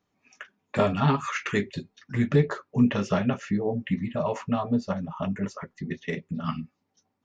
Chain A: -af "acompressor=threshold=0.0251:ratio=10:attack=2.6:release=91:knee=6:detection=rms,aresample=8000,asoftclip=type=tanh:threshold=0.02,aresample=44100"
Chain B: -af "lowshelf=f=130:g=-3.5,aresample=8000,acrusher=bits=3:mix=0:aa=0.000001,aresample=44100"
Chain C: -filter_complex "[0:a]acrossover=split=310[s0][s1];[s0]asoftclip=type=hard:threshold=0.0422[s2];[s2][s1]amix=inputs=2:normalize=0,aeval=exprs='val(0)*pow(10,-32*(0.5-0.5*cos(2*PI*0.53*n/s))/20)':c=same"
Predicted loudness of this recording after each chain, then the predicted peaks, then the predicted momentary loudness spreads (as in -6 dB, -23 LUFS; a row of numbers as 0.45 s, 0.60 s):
-41.5 LUFS, -27.0 LUFS, -37.5 LUFS; -30.5 dBFS, -9.5 dBFS, -16.0 dBFS; 6 LU, 13 LU, 22 LU